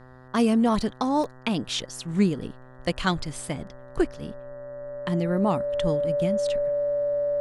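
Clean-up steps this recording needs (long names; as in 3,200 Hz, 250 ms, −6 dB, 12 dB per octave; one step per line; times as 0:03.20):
hum removal 127.8 Hz, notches 15
notch filter 580 Hz, Q 30
repair the gap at 0:00.82/0:01.24, 1.2 ms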